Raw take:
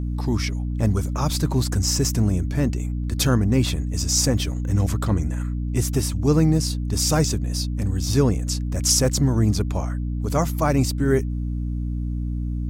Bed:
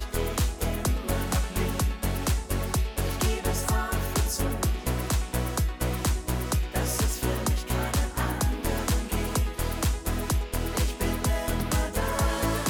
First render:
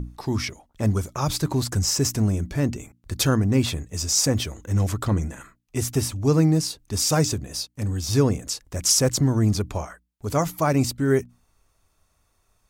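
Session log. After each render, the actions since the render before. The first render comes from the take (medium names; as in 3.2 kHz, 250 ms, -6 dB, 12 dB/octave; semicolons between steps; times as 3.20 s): hum notches 60/120/180/240/300 Hz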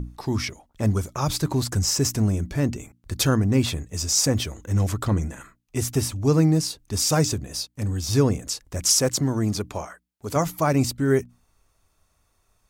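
8.98–10.36 s: high-pass 180 Hz 6 dB/octave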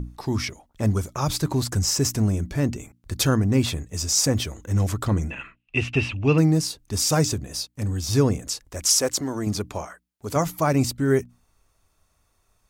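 5.30–6.38 s: resonant low-pass 2.7 kHz, resonance Q 14; 8.69–9.47 s: peaking EQ 140 Hz -12.5 dB 1.1 oct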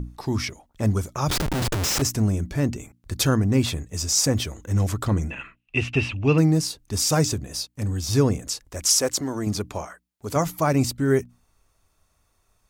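1.30–2.02 s: Schmitt trigger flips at -30 dBFS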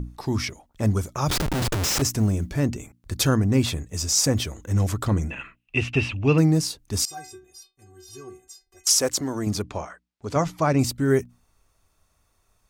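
1.25–2.59 s: companded quantiser 8-bit; 7.05–8.87 s: inharmonic resonator 370 Hz, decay 0.31 s, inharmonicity 0.008; 9.62–10.79 s: low-pass 5.6 kHz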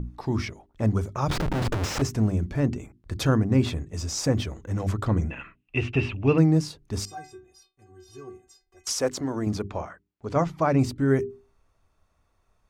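low-pass 1.9 kHz 6 dB/octave; hum notches 50/100/150/200/250/300/350/400 Hz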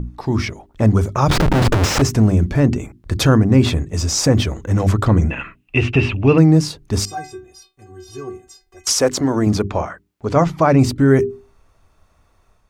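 level rider gain up to 5 dB; in parallel at +1 dB: peak limiter -14 dBFS, peak gain reduction 9.5 dB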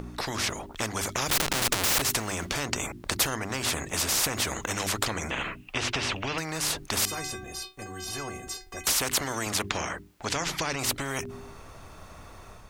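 compression, threshold -14 dBFS, peak gain reduction 8 dB; spectrum-flattening compressor 4:1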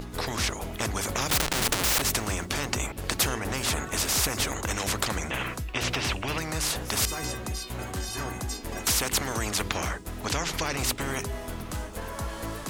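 add bed -8.5 dB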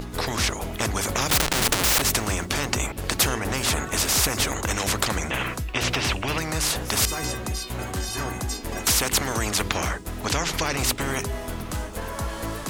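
trim +4 dB; peak limiter -3 dBFS, peak gain reduction 1.5 dB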